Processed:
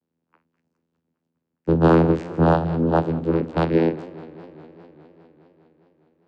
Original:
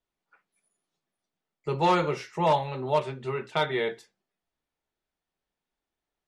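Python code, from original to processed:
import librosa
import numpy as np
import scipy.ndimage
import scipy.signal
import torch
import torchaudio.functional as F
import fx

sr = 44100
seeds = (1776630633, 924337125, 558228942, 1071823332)

y = fx.peak_eq(x, sr, hz=250.0, db=13.0, octaves=1.2)
y = fx.vocoder(y, sr, bands=8, carrier='saw', carrier_hz=82.4)
y = fx.echo_warbled(y, sr, ms=204, feedback_pct=74, rate_hz=2.8, cents=167, wet_db=-19.0)
y = F.gain(torch.from_numpy(y), 5.0).numpy()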